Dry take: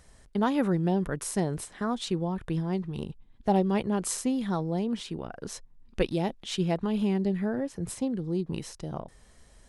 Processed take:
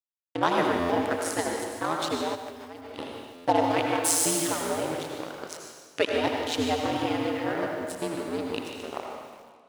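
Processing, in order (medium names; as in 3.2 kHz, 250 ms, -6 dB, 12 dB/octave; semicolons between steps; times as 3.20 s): 4.04–4.52 s: zero-crossing glitches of -25.5 dBFS; high-pass 54 Hz 12 dB/octave; crossover distortion -39.5 dBFS; 6.10–6.77 s: bass shelf 220 Hz +10.5 dB; ring modulator 82 Hz; reverberation RT60 1.7 s, pre-delay 75 ms, DRR 1 dB; 2.35–2.98 s: level held to a coarse grid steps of 22 dB; frequency weighting A; buffer glitch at 0.79/3.34 s, samples 512, times 8; bit-crushed delay 148 ms, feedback 35%, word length 9-bit, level -11.5 dB; trim +8.5 dB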